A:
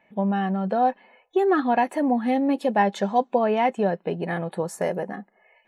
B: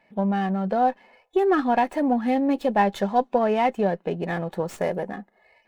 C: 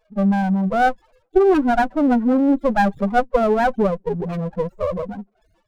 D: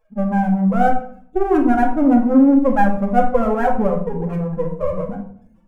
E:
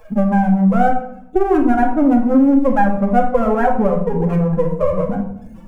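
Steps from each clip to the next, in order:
sliding maximum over 3 samples
loudest bins only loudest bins 4; sliding maximum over 17 samples; trim +7 dB
peaking EQ 4.1 kHz -14 dB 1 oct; simulated room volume 850 m³, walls furnished, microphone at 2.2 m; trim -2 dB
three bands compressed up and down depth 70%; trim +1 dB

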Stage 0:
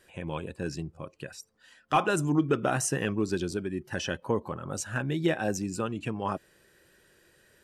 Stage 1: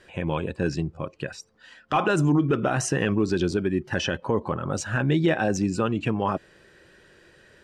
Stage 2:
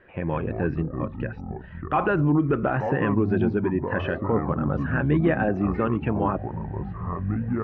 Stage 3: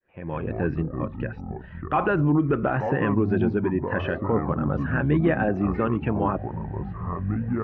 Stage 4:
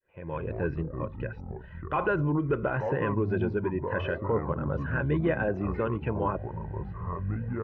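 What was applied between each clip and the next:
Bessel low-pass 4.4 kHz, order 2; peak limiter -21 dBFS, peak gain reduction 8 dB; trim +8.5 dB
low-pass 2.2 kHz 24 dB/octave; ever faster or slower copies 90 ms, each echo -6 st, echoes 3, each echo -6 dB
fade-in on the opening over 0.52 s
comb 2 ms, depth 44%; trim -5 dB

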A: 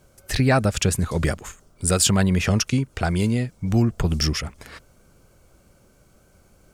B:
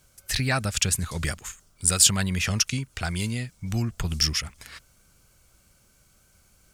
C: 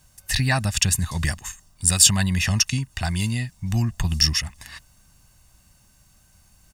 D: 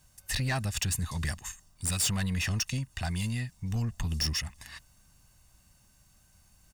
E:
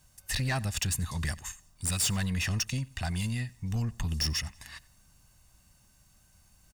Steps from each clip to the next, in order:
amplifier tone stack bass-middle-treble 5-5-5; trim +8.5 dB
comb 1.1 ms, depth 63%; trim +1.5 dB
saturation -19 dBFS, distortion -8 dB; trim -5.5 dB
feedback delay 91 ms, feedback 34%, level -23.5 dB

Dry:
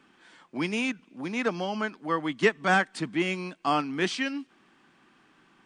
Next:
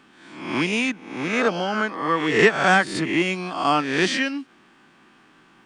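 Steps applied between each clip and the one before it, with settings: reverse spectral sustain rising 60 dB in 0.73 s; trim +4.5 dB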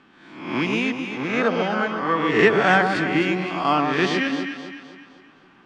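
distance through air 120 m; on a send: echo whose repeats swap between lows and highs 129 ms, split 1.3 kHz, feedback 65%, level -4 dB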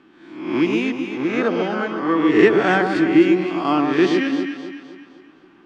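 peaking EQ 330 Hz +12.5 dB 0.52 oct; trim -2 dB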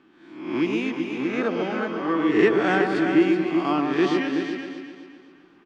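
delay 375 ms -8 dB; trim -5 dB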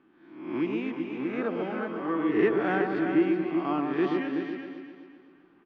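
Bessel low-pass 2.1 kHz, order 2; trim -5 dB

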